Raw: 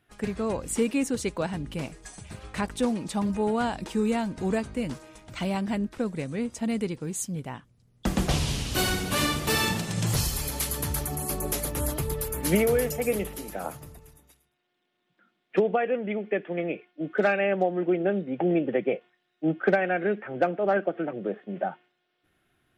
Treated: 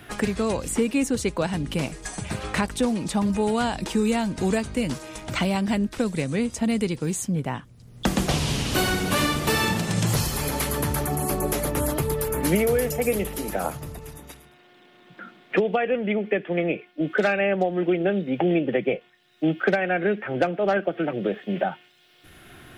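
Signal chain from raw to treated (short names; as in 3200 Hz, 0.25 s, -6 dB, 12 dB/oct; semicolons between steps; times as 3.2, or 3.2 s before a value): 13.7–15.62 high shelf 4700 Hz -9 dB; three-band squash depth 70%; gain +3 dB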